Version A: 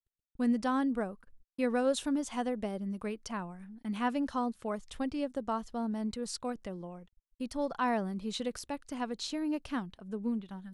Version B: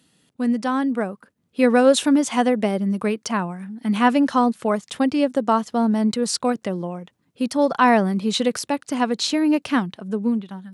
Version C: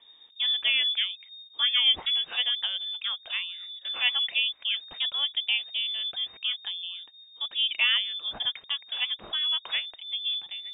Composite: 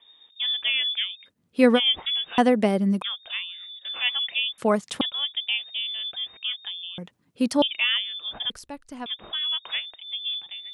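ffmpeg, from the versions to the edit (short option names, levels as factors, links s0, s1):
-filter_complex "[1:a]asplit=4[s0][s1][s2][s3];[2:a]asplit=6[s4][s5][s6][s7][s8][s9];[s4]atrim=end=1.3[s10];[s0]atrim=start=1.24:end=1.8[s11];[s5]atrim=start=1.74:end=2.382[s12];[s1]atrim=start=2.378:end=3.022[s13];[s6]atrim=start=3.018:end=4.582[s14];[s2]atrim=start=4.578:end=5.012[s15];[s7]atrim=start=5.008:end=6.982[s16];[s3]atrim=start=6.978:end=7.622[s17];[s8]atrim=start=7.618:end=8.502[s18];[0:a]atrim=start=8.498:end=9.062[s19];[s9]atrim=start=9.058[s20];[s10][s11]acrossfade=d=0.06:c1=tri:c2=tri[s21];[s21][s12]acrossfade=d=0.06:c1=tri:c2=tri[s22];[s22][s13]acrossfade=d=0.004:c1=hsin:c2=hsin[s23];[s23][s14]acrossfade=d=0.004:c1=hsin:c2=hsin[s24];[s24][s15]acrossfade=d=0.004:c1=hsin:c2=hsin[s25];[s25][s16]acrossfade=d=0.004:c1=hsin:c2=hsin[s26];[s26][s17]acrossfade=d=0.004:c1=hsin:c2=hsin[s27];[s27][s18]acrossfade=d=0.004:c1=hsin:c2=hsin[s28];[s28][s19]acrossfade=d=0.004:c1=hsin:c2=hsin[s29];[s29][s20]acrossfade=d=0.004:c1=hsin:c2=hsin"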